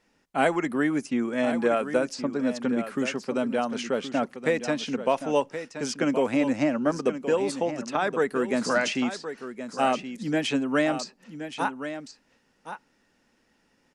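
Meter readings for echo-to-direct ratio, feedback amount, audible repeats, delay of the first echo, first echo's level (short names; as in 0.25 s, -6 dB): -10.5 dB, no steady repeat, 1, 1.072 s, -10.5 dB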